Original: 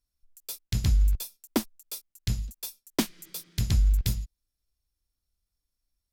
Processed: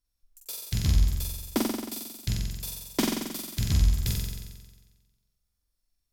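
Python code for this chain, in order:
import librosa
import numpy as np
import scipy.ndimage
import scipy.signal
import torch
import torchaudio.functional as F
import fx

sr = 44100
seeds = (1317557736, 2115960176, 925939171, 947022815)

y = fx.room_flutter(x, sr, wall_m=7.7, rt60_s=1.3)
y = y * librosa.db_to_amplitude(-1.5)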